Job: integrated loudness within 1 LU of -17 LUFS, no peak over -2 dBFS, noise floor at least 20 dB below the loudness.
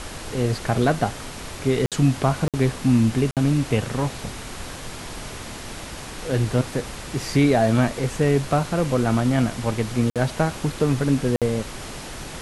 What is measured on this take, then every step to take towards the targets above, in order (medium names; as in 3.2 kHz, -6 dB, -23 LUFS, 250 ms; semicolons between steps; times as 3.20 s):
dropouts 5; longest dropout 57 ms; noise floor -36 dBFS; noise floor target -42 dBFS; loudness -22.0 LUFS; peak level -5.5 dBFS; loudness target -17.0 LUFS
-> interpolate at 1.86/2.48/3.31/10.10/11.36 s, 57 ms; noise print and reduce 6 dB; trim +5 dB; peak limiter -2 dBFS